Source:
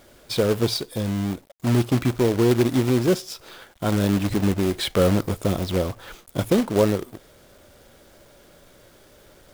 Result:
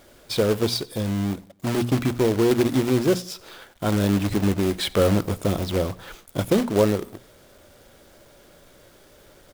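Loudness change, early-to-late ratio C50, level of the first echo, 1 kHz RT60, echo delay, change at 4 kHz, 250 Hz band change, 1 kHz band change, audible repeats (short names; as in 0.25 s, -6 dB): -0.5 dB, none, -23.5 dB, none, 90 ms, 0.0 dB, -0.5 dB, 0.0 dB, 2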